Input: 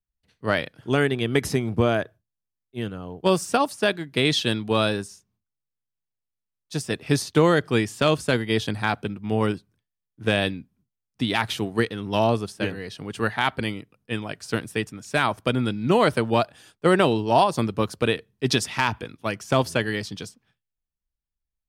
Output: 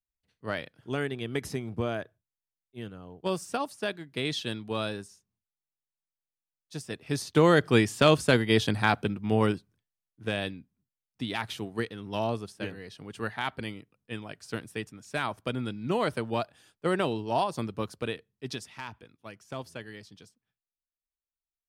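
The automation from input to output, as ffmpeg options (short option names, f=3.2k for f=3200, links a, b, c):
-af "afade=t=in:st=7.1:d=0.55:silence=0.316228,afade=t=out:st=9.12:d=1.13:silence=0.354813,afade=t=out:st=17.83:d=0.87:silence=0.375837"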